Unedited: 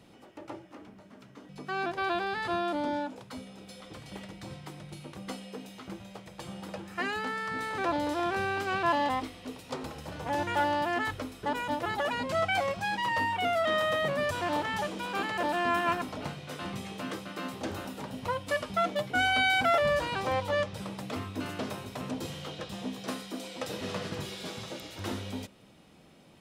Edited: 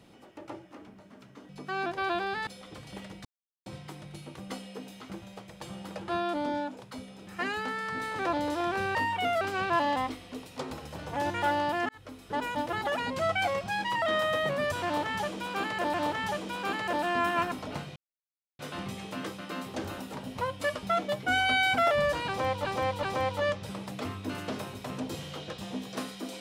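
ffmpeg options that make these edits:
-filter_complex "[0:a]asplit=13[a][b][c][d][e][f][g][h][i][j][k][l][m];[a]atrim=end=2.472[n];[b]atrim=start=3.658:end=4.44,asetpts=PTS-STARTPTS,afade=t=out:st=0.778:d=0.004:c=hsin,apad=pad_dur=0.41[o];[c]atrim=start=4.44:end=6.862,asetpts=PTS-STARTPTS,afade=t=in:d=0.004:c=hsin[p];[d]atrim=start=2.468:end=3.662[q];[e]atrim=start=6.858:end=8.542[r];[f]atrim=start=13.148:end=13.612[s];[g]atrim=start=8.538:end=11.02,asetpts=PTS-STARTPTS,afade=t=out:st=2.478:d=0.004:c=hsin[t];[h]atrim=start=11.02:end=13.152,asetpts=PTS-STARTPTS,afade=t=in:d=0.51[u];[i]atrim=start=13.608:end=15.532[v];[j]atrim=start=14.438:end=16.46,asetpts=PTS-STARTPTS,afade=t=out:st=2.018:d=0.004:c=hsin,apad=pad_dur=0.63[w];[k]atrim=start=16.46:end=20.522,asetpts=PTS-STARTPTS,afade=t=in:d=0.004:c=hsin[x];[l]atrim=start=20.138:end=20.522[y];[m]atrim=start=20.138[z];[o][p]concat=n=2:v=0:a=1[aa];[n][aa]acrossfade=d=0.004:c1=hsin:c2=hsin[ab];[ab][q]acrossfade=d=0.004:c1=hsin:c2=hsin[ac];[ac][r]acrossfade=d=0.004:c1=hsin:c2=hsin[ad];[ad][s]acrossfade=d=0.004:c1=hsin:c2=hsin[ae];[t][u]concat=n=2:v=0:a=1[af];[ae][af]acrossfade=d=0.004:c1=hsin:c2=hsin[ag];[ag][v]acrossfade=d=0.004:c1=hsin:c2=hsin[ah];[w][x]concat=n=2:v=0:a=1[ai];[ah][ai]acrossfade=d=0.004:c1=hsin:c2=hsin[aj];[aj][y]acrossfade=d=0.004:c1=hsin:c2=hsin[ak];[ak][z]acrossfade=d=0.004:c1=hsin:c2=hsin"

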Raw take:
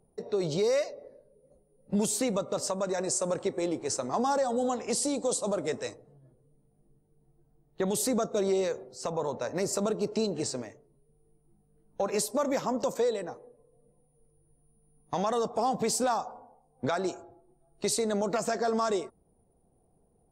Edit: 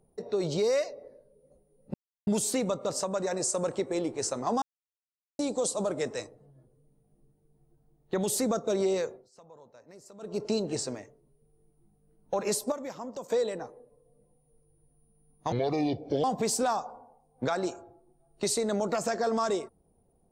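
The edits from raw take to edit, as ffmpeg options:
-filter_complex "[0:a]asplit=10[a][b][c][d][e][f][g][h][i][j];[a]atrim=end=1.94,asetpts=PTS-STARTPTS,afade=t=out:st=1.936:d=0.004:c=hsin,apad=pad_dur=0.33[k];[b]atrim=start=1.94:end=4.29,asetpts=PTS-STARTPTS,afade=t=in:d=0.004:c=hsin,afade=t=out:st=2.346:d=0.004:c=hsin[l];[c]atrim=start=4.29:end=5.06,asetpts=PTS-STARTPTS,volume=0[m];[d]atrim=start=5.06:end=8.97,asetpts=PTS-STARTPTS,afade=t=in:d=0.004:c=hsin,afade=t=out:st=3.67:d=0.24:silence=0.0841395[n];[e]atrim=start=8.97:end=9.86,asetpts=PTS-STARTPTS,volume=-21.5dB[o];[f]atrim=start=9.86:end=12.392,asetpts=PTS-STARTPTS,afade=t=in:d=0.24:silence=0.0841395[p];[g]atrim=start=12.388:end=12.972,asetpts=PTS-STARTPTS,volume=-9.5dB[q];[h]atrim=start=12.968:end=15.194[r];[i]atrim=start=15.19:end=15.65,asetpts=PTS-STARTPTS,asetrate=28224,aresample=44100[s];[j]atrim=start=15.646[t];[k][l][m][n][o][p]concat=n=6:v=0:a=1[u];[u][q]acrossfade=d=0.004:c1=hsin:c2=hsin[v];[v][r]acrossfade=d=0.004:c1=hsin:c2=hsin[w];[w][s]acrossfade=d=0.004:c1=hsin:c2=hsin[x];[x][t]acrossfade=d=0.004:c1=hsin:c2=hsin"

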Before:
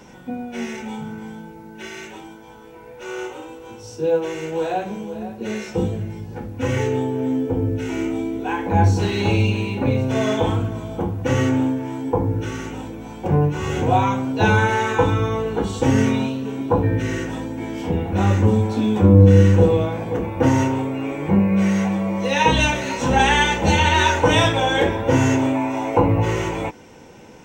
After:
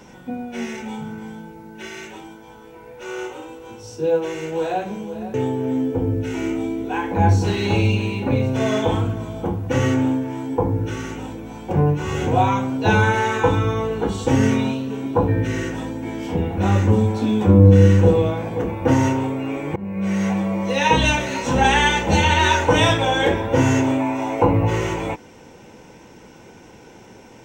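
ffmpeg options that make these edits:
-filter_complex "[0:a]asplit=3[a][b][c];[a]atrim=end=5.342[d];[b]atrim=start=6.888:end=21.31,asetpts=PTS-STARTPTS,afade=t=out:st=14.418:d=0.004:c=hsin:silence=0.0668344[e];[c]atrim=start=21.31,asetpts=PTS-STARTPTS,afade=t=in:d=0.55:silence=0.0668344[f];[e][f]concat=n=2:v=0:a=1[g];[d][g]acrossfade=d=0.004:c1=hsin:c2=hsin"

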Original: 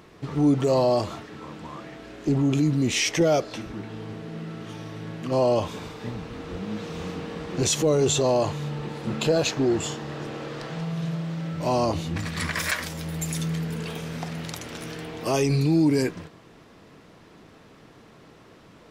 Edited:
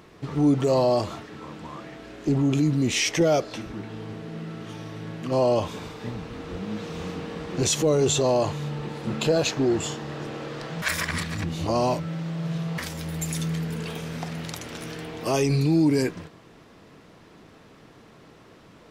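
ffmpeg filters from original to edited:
-filter_complex "[0:a]asplit=3[a][b][c];[a]atrim=end=10.822[d];[b]atrim=start=10.818:end=12.782,asetpts=PTS-STARTPTS,areverse[e];[c]atrim=start=12.778[f];[d][e]acrossfade=d=0.004:c1=hsin:c2=hsin[g];[g][f]acrossfade=d=0.004:c1=hsin:c2=hsin"

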